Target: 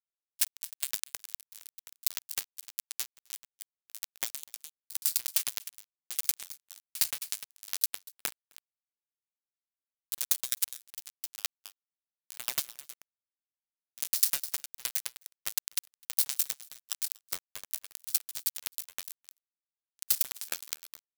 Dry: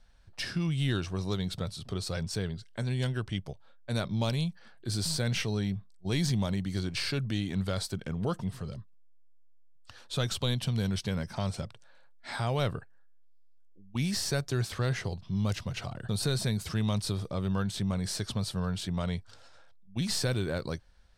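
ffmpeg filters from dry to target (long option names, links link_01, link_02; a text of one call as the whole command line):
ffmpeg -i in.wav -filter_complex "[0:a]asplit=3[link_01][link_02][link_03];[link_01]afade=type=out:start_time=12.63:duration=0.02[link_04];[link_02]highpass=frequency=150:width=0.5412,highpass=frequency=150:width=1.3066,afade=type=in:start_time=12.63:duration=0.02,afade=type=out:start_time=14.03:duration=0.02[link_05];[link_03]afade=type=in:start_time=14.03:duration=0.02[link_06];[link_04][link_05][link_06]amix=inputs=3:normalize=0,acrossover=split=190[link_07][link_08];[link_08]alimiter=level_in=2.5dB:limit=-24dB:level=0:latency=1:release=18,volume=-2.5dB[link_09];[link_07][link_09]amix=inputs=2:normalize=0,acrossover=split=330[link_10][link_11];[link_10]acompressor=threshold=-51dB:ratio=2.5[link_12];[link_12][link_11]amix=inputs=2:normalize=0,acrusher=bits=4:mix=0:aa=0.000001,crystalizer=i=9:c=0,asplit=2[link_13][link_14];[link_14]aecho=0:1:260:0.224[link_15];[link_13][link_15]amix=inputs=2:normalize=0,aeval=exprs='val(0)*pow(10,-35*if(lt(mod(9.7*n/s,1),2*abs(9.7)/1000),1-mod(9.7*n/s,1)/(2*abs(9.7)/1000),(mod(9.7*n/s,1)-2*abs(9.7)/1000)/(1-2*abs(9.7)/1000))/20)':channel_layout=same,volume=-2dB" out.wav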